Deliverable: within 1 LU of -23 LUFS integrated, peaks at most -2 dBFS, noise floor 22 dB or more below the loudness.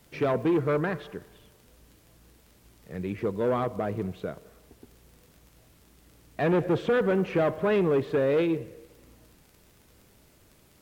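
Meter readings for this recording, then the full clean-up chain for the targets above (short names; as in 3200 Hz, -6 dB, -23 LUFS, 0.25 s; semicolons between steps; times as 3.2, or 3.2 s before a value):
ticks 30/s; loudness -27.0 LUFS; peak -16.0 dBFS; loudness target -23.0 LUFS
-> de-click; gain +4 dB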